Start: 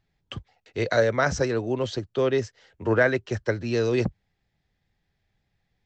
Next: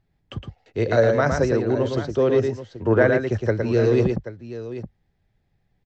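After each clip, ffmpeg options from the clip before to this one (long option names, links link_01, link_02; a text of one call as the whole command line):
ffmpeg -i in.wav -af "tiltshelf=frequency=1200:gain=5,aecho=1:1:112|781:0.562|0.224" out.wav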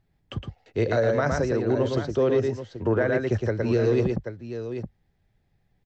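ffmpeg -i in.wav -af "alimiter=limit=-13dB:level=0:latency=1:release=215" out.wav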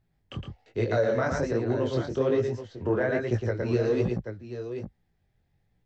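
ffmpeg -i in.wav -af "flanger=delay=16.5:depth=7.8:speed=1.2" out.wav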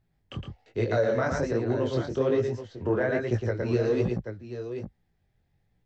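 ffmpeg -i in.wav -af anull out.wav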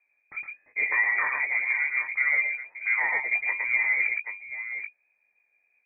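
ffmpeg -i in.wav -af "lowpass=frequency=2100:width_type=q:width=0.5098,lowpass=frequency=2100:width_type=q:width=0.6013,lowpass=frequency=2100:width_type=q:width=0.9,lowpass=frequency=2100:width_type=q:width=2.563,afreqshift=-2500" out.wav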